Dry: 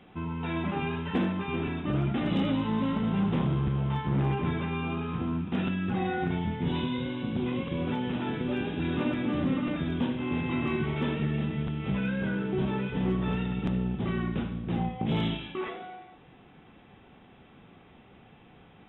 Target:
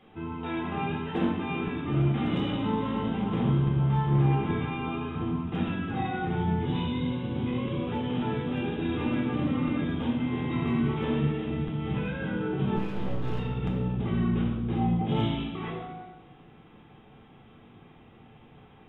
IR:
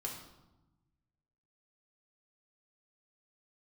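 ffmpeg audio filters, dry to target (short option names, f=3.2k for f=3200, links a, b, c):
-filter_complex "[0:a]asettb=1/sr,asplit=3[a][b][c];[a]atrim=end=12.764[d];[b]atrim=start=12.76:end=13.39,asetpts=PTS-STARTPTS,afade=t=in:d=0.004:c=qsin,afade=t=out:st=0.626:d=0.004:c=qsin,aeval=exprs='max(val(0),0)':c=same[e];[c]atrim=start=13.386[f];[d][e]acrossfade=d=0.004:c1=hsin:c2=qsin[g];[g][f]acrossfade=d=0.004:c1=qsin:c2=hsin[h];[1:a]atrim=start_sample=2205[i];[h][i]afir=irnorm=-1:irlink=0"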